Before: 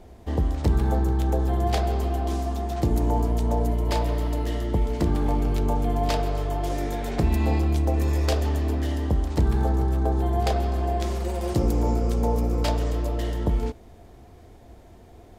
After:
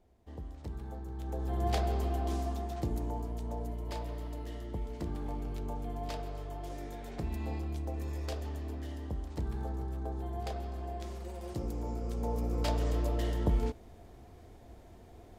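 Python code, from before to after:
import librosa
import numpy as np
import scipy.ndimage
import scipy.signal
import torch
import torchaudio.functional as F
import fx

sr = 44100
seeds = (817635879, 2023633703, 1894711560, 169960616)

y = fx.gain(x, sr, db=fx.line((1.04, -20.0), (1.68, -7.0), (2.46, -7.0), (3.2, -14.5), (11.88, -14.5), (12.94, -5.0)))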